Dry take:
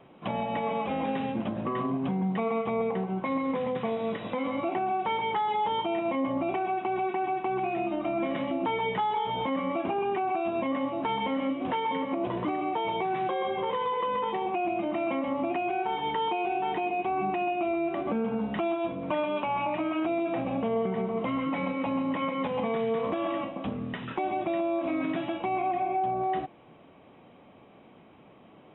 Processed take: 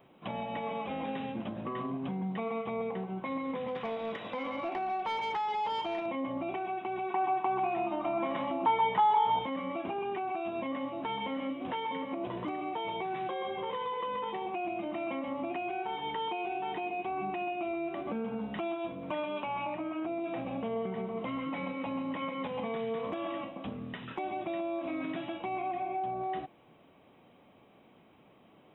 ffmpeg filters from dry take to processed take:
ffmpeg -i in.wav -filter_complex "[0:a]asettb=1/sr,asplit=3[link_01][link_02][link_03];[link_01]atrim=end=3.684[link_04];[link_02]atrim=start=3.68:end=6.06,asetpts=PTS-STARTPTS,afade=type=in:duration=0.004:curve=qsin,afade=type=out:start_time=2.376:duration=0.004:curve=qsin,asplit=2[link_05][link_06];[link_06]highpass=frequency=720:poles=1,volume=10dB,asoftclip=type=tanh:threshold=-19.5dB[link_07];[link_05][link_07]amix=inputs=2:normalize=0,lowpass=frequency=2800:poles=1,volume=-6dB[link_08];[link_03]atrim=start=6.056[link_09];[link_04][link_08]acrossfade=duration=0.004:curve1=hsin:curve2=qsin[link_10];[link_10][link_09]acrossfade=duration=0.004:curve1=qsin:curve2=hsin,asettb=1/sr,asplit=3[link_11][link_12][link_13];[link_11]atrim=end=7.104[link_14];[link_12]atrim=start=7.1:end=9.39,asetpts=PTS-STARTPTS,afade=type=in:duration=0.004:curve=qsin,afade=type=out:start_time=2.286:duration=0.004:curve=qsin,equalizer=frequency=960:width_type=o:width=0.87:gain=11.5[link_15];[link_13]atrim=start=9.386[link_16];[link_14][link_15]acrossfade=duration=0.004:curve1=hsin:curve2=qsin[link_17];[link_17][link_16]acrossfade=duration=0.004:curve1=qsin:curve2=hsin,asettb=1/sr,asplit=3[link_18][link_19][link_20];[link_18]atrim=end=19.744[link_21];[link_19]atrim=start=19.74:end=20.24,asetpts=PTS-STARTPTS,afade=type=in:duration=0.004:curve=qsin,afade=type=out:start_time=0.496:duration=0.004:curve=qsin,lowpass=frequency=1500:poles=1[link_22];[link_20]atrim=start=20.236[link_23];[link_21][link_22]acrossfade=duration=0.004:curve1=hsin:curve2=qsin[link_24];[link_24][link_23]acrossfade=duration=0.004:curve1=qsin:curve2=hsin,aemphasis=mode=production:type=50kf,volume=-6.5dB" out.wav

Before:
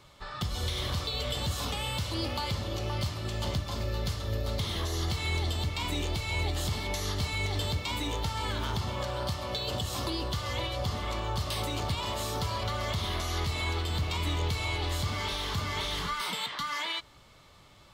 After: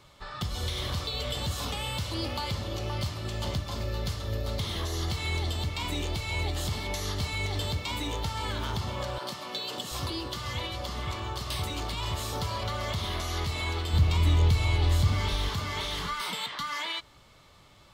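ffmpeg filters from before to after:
ffmpeg -i in.wav -filter_complex "[0:a]asettb=1/sr,asplit=3[link_01][link_02][link_03];[link_01]atrim=end=9.184[link_04];[link_02]atrim=start=9.18:end=12.33,asetpts=PTS-STARTPTS,afade=type=in:duration=0.004:curve=qsin,afade=type=out:start_time=3.146:duration=0.004:curve=qsin,acrossover=split=170|590[link_05][link_06][link_07];[link_06]adelay=30[link_08];[link_05]adelay=730[link_09];[link_09][link_08][link_07]amix=inputs=3:normalize=0,atrim=end_sample=138915[link_10];[link_03]atrim=start=12.326[link_11];[link_04][link_10]acrossfade=duration=0.004:curve1=hsin:curve2=qsin[link_12];[link_12][link_11]acrossfade=duration=0.004:curve1=qsin:curve2=hsin,asettb=1/sr,asplit=3[link_13][link_14][link_15];[link_13]atrim=end=13.934[link_16];[link_14]atrim=start=13.93:end=15.49,asetpts=PTS-STARTPTS,afade=type=in:duration=0.004:curve=qsin,afade=type=out:start_time=1.556:duration=0.004:curve=qsin,lowshelf=frequency=180:gain=11.5[link_17];[link_15]atrim=start=15.486[link_18];[link_16][link_17]acrossfade=duration=0.004:curve1=hsin:curve2=qsin[link_19];[link_19][link_18]acrossfade=duration=0.004:curve1=qsin:curve2=hsin" out.wav

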